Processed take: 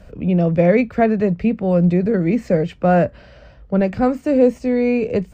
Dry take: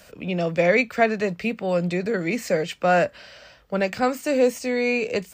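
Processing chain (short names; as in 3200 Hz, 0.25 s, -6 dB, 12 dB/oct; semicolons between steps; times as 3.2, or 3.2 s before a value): tilt -4.5 dB/oct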